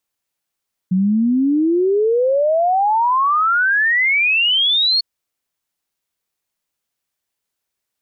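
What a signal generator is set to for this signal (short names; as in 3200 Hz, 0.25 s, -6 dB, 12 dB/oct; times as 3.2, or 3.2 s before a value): log sweep 180 Hz -> 4400 Hz 4.10 s -12.5 dBFS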